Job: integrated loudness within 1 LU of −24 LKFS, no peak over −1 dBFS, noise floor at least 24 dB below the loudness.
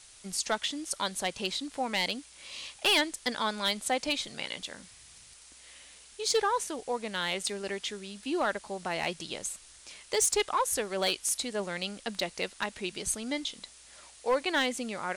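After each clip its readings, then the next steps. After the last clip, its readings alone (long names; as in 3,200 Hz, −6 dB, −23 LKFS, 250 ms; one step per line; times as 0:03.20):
share of clipped samples 0.3%; peaks flattened at −20.0 dBFS; background noise floor −54 dBFS; target noise floor −55 dBFS; integrated loudness −31.0 LKFS; sample peak −20.0 dBFS; target loudness −24.0 LKFS
→ clipped peaks rebuilt −20 dBFS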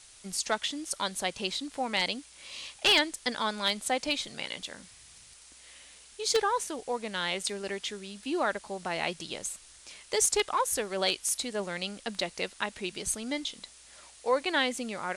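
share of clipped samples 0.0%; background noise floor −54 dBFS; target noise floor −55 dBFS
→ broadband denoise 6 dB, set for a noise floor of −54 dBFS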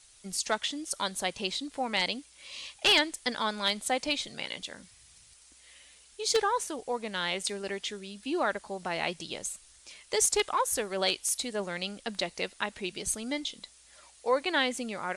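background noise floor −58 dBFS; integrated loudness −30.5 LKFS; sample peak −11.0 dBFS; target loudness −24.0 LKFS
→ level +6.5 dB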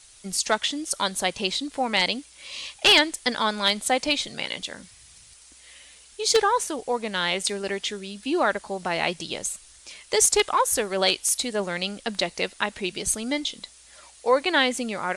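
integrated loudness −24.0 LKFS; sample peak −4.5 dBFS; background noise floor −51 dBFS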